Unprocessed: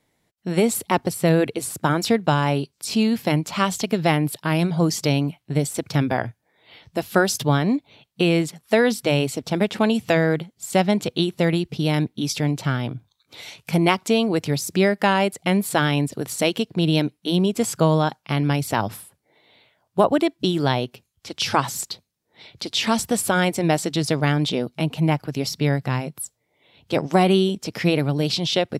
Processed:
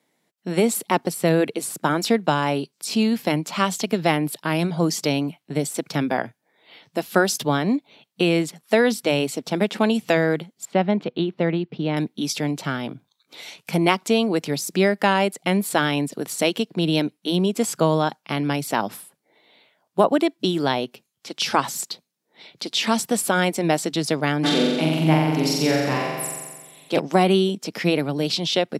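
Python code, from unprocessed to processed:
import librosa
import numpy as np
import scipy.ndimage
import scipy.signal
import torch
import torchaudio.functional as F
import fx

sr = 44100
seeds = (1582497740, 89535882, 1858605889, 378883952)

y = fx.air_absorb(x, sr, metres=340.0, at=(10.65, 11.97))
y = fx.room_flutter(y, sr, wall_m=7.6, rt60_s=1.4, at=(24.43, 26.98), fade=0.02)
y = scipy.signal.sosfilt(scipy.signal.butter(4, 170.0, 'highpass', fs=sr, output='sos'), y)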